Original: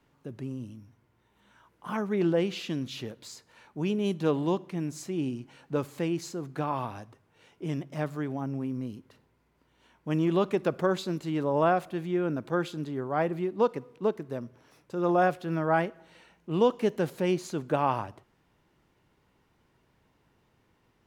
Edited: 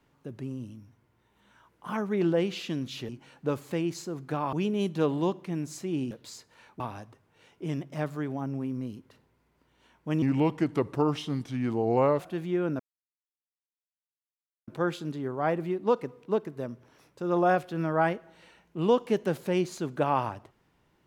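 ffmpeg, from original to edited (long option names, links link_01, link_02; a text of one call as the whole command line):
ffmpeg -i in.wav -filter_complex "[0:a]asplit=8[link_01][link_02][link_03][link_04][link_05][link_06][link_07][link_08];[link_01]atrim=end=3.092[link_09];[link_02]atrim=start=5.358:end=6.802[link_10];[link_03]atrim=start=3.778:end=5.362[link_11];[link_04]atrim=start=3.088:end=3.782[link_12];[link_05]atrim=start=6.798:end=10.224[link_13];[link_06]atrim=start=10.22:end=11.8,asetpts=PTS-STARTPTS,asetrate=35280,aresample=44100[link_14];[link_07]atrim=start=11.796:end=12.4,asetpts=PTS-STARTPTS,afade=type=out:start_time=0.6:duration=0.004:curve=hsin,apad=pad_dur=1.88[link_15];[link_08]atrim=start=12.4,asetpts=PTS-STARTPTS,afade=type=in:duration=0.004:curve=hsin[link_16];[link_09][link_10]acrossfade=duration=0.004:curve1=hsin:curve2=hsin[link_17];[link_17][link_11]acrossfade=duration=0.004:curve1=hsin:curve2=hsin[link_18];[link_18][link_12]acrossfade=duration=0.004:curve1=hsin:curve2=hsin[link_19];[link_19][link_13]acrossfade=duration=0.004:curve1=hsin:curve2=hsin[link_20];[link_20][link_14]acrossfade=duration=0.004:curve1=hsin:curve2=hsin[link_21];[link_15][link_16]concat=n=2:v=0:a=1[link_22];[link_21][link_22]acrossfade=duration=0.004:curve1=hsin:curve2=hsin" out.wav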